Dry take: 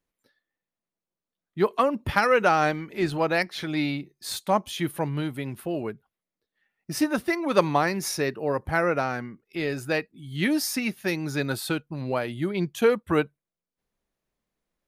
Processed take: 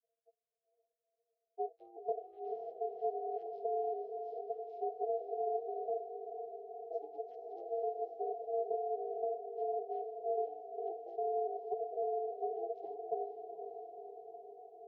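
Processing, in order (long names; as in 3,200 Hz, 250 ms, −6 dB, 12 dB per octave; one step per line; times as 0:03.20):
vocoder with an arpeggio as carrier minor triad, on A2, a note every 279 ms
inverse Chebyshev band-stop filter 320–1,500 Hz, stop band 70 dB
treble cut that deepens with the level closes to 950 Hz, closed at −45.5 dBFS
low-pass filter 4,800 Hz
low-shelf EQ 220 Hz +6 dB
downward compressor, threshold −44 dBFS, peak gain reduction 11 dB
low-pass that shuts in the quiet parts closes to 500 Hz, open at −35 dBFS
ring modulation 570 Hz
feedback delay with all-pass diffusion 494 ms, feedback 69%, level −7.5 dB
level +13.5 dB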